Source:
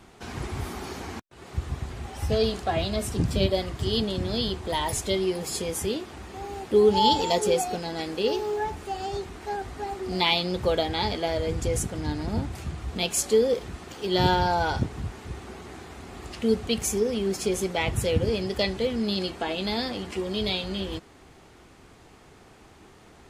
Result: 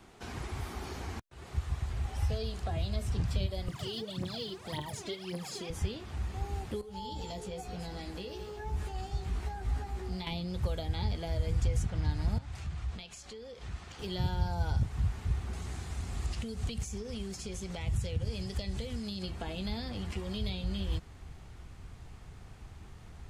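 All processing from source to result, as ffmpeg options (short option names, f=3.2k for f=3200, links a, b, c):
-filter_complex "[0:a]asettb=1/sr,asplit=3[a][b][c];[a]atrim=end=3.684[d];[b]atrim=start=3.68:end=5.7,asetpts=PTS-STARTPTS,afade=t=in:d=0.004:c=qsin,afade=t=out:st=2.016:d=0.004:c=qsin,aphaser=in_gain=1:out_gain=1:delay=3.1:decay=0.77:speed=1.8:type=triangular,highpass=f=160:w=0.5412,highpass=f=160:w=1.3066[e];[c]atrim=start=5.696[f];[d][e]acrossfade=d=0.004:c1=hsin:c2=qsin[g];[g][f]acrossfade=d=0.004:c1=qsin:c2=hsin,asettb=1/sr,asplit=3[h][i][j];[h]atrim=end=6.814[k];[i]atrim=start=6.81:end=10.27,asetpts=PTS-STARTPTS,afade=t=in:d=0.004:c=qsin,afade=t=out:st=3.456:d=0.004:c=qsin,acompressor=threshold=-36dB:ratio=3:attack=3.2:release=140:knee=1:detection=peak,asplit=2[l][m];[m]adelay=16,volume=-4dB[n];[l][n]amix=inputs=2:normalize=0,atrim=end_sample=152586,aecho=1:1:212:0.282,atrim=end_sample=152586[o];[j]atrim=start=10.266[p];[k][o]acrossfade=d=0.004:c1=hsin:c2=qsin[q];[q][p]acrossfade=d=0.004:c1=qsin:c2=hsin,asettb=1/sr,asplit=3[r][s][t];[r]atrim=end=12.384[u];[s]atrim=start=12.38:end=13.99,asetpts=PTS-STARTPTS,afade=t=in:d=0.004:c=qsin,afade=t=out:st=1.606:d=0.004:c=qsin,lowpass=7.6k,lowshelf=f=450:g=-10,acompressor=threshold=-39dB:ratio=4:attack=3.2:release=140:knee=1:detection=peak[v];[t]atrim=start=13.986[w];[u][v]acrossfade=d=0.004:c1=hsin:c2=qsin[x];[x][w]acrossfade=d=0.004:c1=qsin:c2=hsin,asettb=1/sr,asplit=3[y][z][aa];[y]atrim=end=15.534[ab];[z]atrim=start=15.53:end=19.23,asetpts=PTS-STARTPTS,afade=t=in:d=0.004:c=qsin,afade=t=out:st=3.696:d=0.004:c=qsin,equalizer=f=8.2k:w=0.68:g=10.5,acompressor=threshold=-33dB:ratio=2.5:attack=3.2:release=140:knee=1:detection=peak[ac];[aa]atrim=start=19.226[ad];[ab][ac]acrossfade=d=0.004:c1=hsin:c2=qsin[ae];[ae][ad]acrossfade=d=0.004:c1=qsin:c2=hsin,acrossover=split=550|6100[af][ag][ah];[af]acompressor=threshold=-34dB:ratio=4[ai];[ag]acompressor=threshold=-38dB:ratio=4[aj];[ah]acompressor=threshold=-52dB:ratio=4[ak];[ai][aj][ak]amix=inputs=3:normalize=0,asubboost=boost=7:cutoff=120,volume=-4.5dB"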